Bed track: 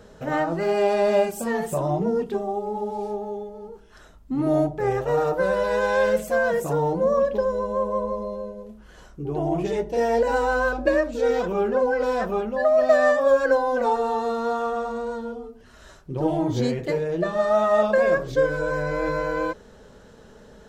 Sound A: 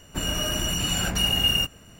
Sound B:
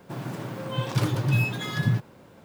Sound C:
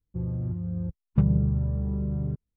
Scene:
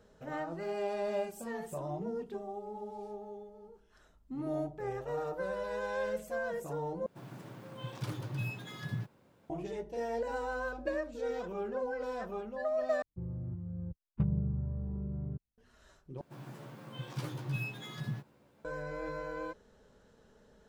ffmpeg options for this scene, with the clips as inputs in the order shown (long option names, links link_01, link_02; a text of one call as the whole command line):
ffmpeg -i bed.wav -i cue0.wav -i cue1.wav -i cue2.wav -filter_complex "[2:a]asplit=2[link_01][link_02];[0:a]volume=-14.5dB[link_03];[link_02]asplit=2[link_04][link_05];[link_05]adelay=14,volume=-3dB[link_06];[link_04][link_06]amix=inputs=2:normalize=0[link_07];[link_03]asplit=4[link_08][link_09][link_10][link_11];[link_08]atrim=end=7.064[link_12];[link_01]atrim=end=2.44,asetpts=PTS-STARTPTS,volume=-14dB[link_13];[link_09]atrim=start=9.496:end=13.024[link_14];[3:a]atrim=end=2.56,asetpts=PTS-STARTPTS,volume=-9.5dB[link_15];[link_10]atrim=start=15.576:end=16.214[link_16];[link_07]atrim=end=2.44,asetpts=PTS-STARTPTS,volume=-15.5dB[link_17];[link_11]atrim=start=18.646[link_18];[link_12][link_13]acrossfade=duration=0.004:curve1=hsin:curve2=hsin[link_19];[link_19][link_14]acrossfade=duration=0.004:curve1=hsin:curve2=hsin[link_20];[link_20][link_15]acrossfade=duration=0.004:curve1=hsin:curve2=hsin[link_21];[link_21][link_16]acrossfade=duration=0.004:curve1=hsin:curve2=hsin[link_22];[link_22][link_17]acrossfade=duration=0.004:curve1=hsin:curve2=hsin[link_23];[link_23][link_18]acrossfade=duration=0.004:curve1=hsin:curve2=hsin" out.wav